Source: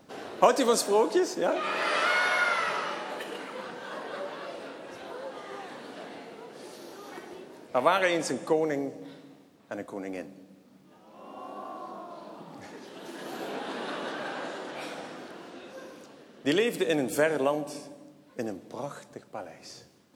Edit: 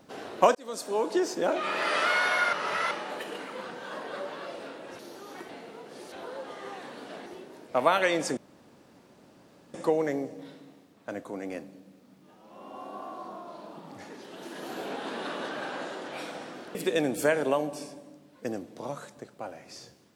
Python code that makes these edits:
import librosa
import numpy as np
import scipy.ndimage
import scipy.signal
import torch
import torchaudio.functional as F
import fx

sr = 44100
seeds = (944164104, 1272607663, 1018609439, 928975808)

y = fx.edit(x, sr, fx.fade_in_span(start_s=0.55, length_s=0.75),
    fx.reverse_span(start_s=2.53, length_s=0.38),
    fx.swap(start_s=4.99, length_s=1.14, other_s=6.76, other_length_s=0.5),
    fx.insert_room_tone(at_s=8.37, length_s=1.37),
    fx.cut(start_s=15.38, length_s=1.31), tone=tone)